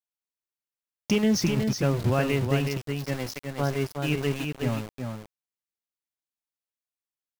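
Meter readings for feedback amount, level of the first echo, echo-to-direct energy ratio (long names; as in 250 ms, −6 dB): repeats not evenly spaced, −5.5 dB, −5.5 dB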